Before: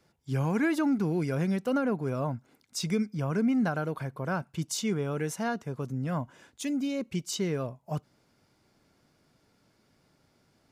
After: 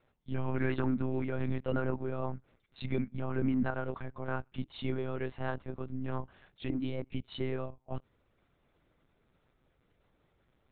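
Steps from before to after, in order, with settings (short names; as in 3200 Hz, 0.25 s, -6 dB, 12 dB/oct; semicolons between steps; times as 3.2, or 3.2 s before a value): monotone LPC vocoder at 8 kHz 130 Hz; gain -4 dB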